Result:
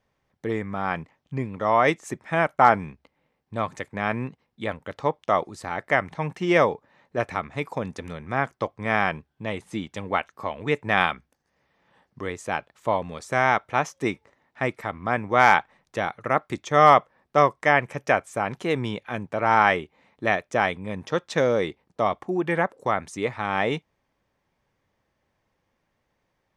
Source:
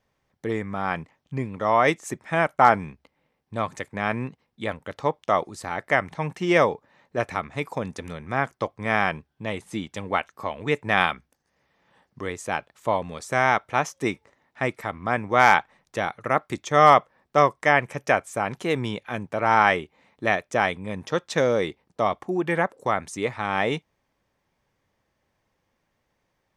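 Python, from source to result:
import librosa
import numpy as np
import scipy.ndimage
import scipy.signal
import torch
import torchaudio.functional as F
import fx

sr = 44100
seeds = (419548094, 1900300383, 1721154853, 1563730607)

y = fx.high_shelf(x, sr, hz=6400.0, db=-6.5)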